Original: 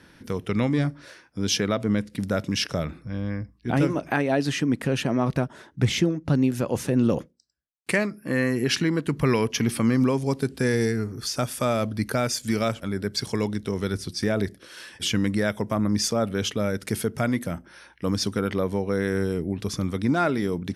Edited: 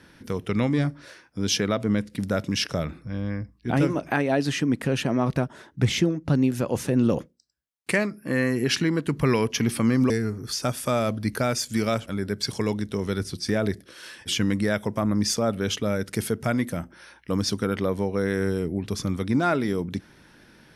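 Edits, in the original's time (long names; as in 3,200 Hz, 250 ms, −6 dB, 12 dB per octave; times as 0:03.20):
0:10.10–0:10.84: remove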